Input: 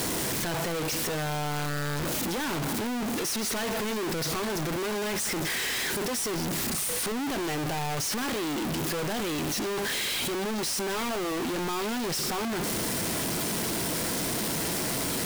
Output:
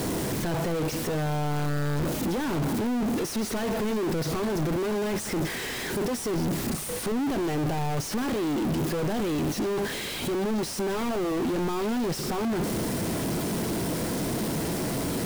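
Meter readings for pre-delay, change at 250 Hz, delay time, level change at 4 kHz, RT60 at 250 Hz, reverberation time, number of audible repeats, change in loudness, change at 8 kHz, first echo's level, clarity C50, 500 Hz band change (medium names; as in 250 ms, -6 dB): no reverb, +4.5 dB, no echo, -5.0 dB, no reverb, no reverb, no echo, +0.5 dB, -5.5 dB, no echo, no reverb, +3.0 dB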